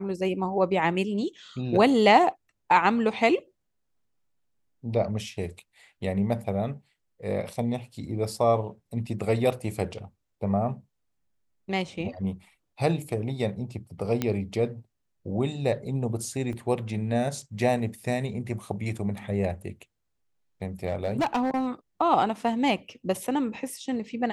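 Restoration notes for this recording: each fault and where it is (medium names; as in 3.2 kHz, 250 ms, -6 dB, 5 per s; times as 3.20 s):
14.22 s: pop -12 dBFS
16.53 s: dropout 2 ms
20.89–21.68 s: clipped -21 dBFS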